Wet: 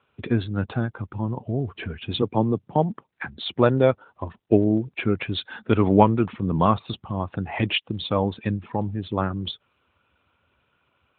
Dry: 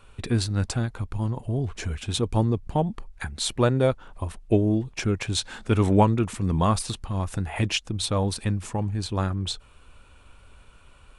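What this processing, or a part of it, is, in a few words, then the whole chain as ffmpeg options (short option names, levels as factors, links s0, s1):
mobile call with aggressive noise cancelling: -filter_complex "[0:a]asettb=1/sr,asplit=3[s0][s1][s2];[s0]atrim=end=2.224[s3];[s1]atrim=start=2.22:end=3.28,asetpts=PTS-STARTPTS,afade=t=in:d=0.004:c=qsin,afade=t=out:st=1.056:d=0.004:c=qsin,highpass=f=110:w=0.5412,highpass=f=110:w=1.3066[s4];[s2]atrim=start=3.276[s5];[s3][s4]acrossfade=d=0.004:c1=hsin:c2=qsin[s6];[s6][s5]acrossfade=d=0.004:c1=qsin:c2=hsin,highpass=f=160:p=1,afftdn=nr=13:nf=-42,volume=1.68" -ar 8000 -c:a libopencore_amrnb -b:a 12200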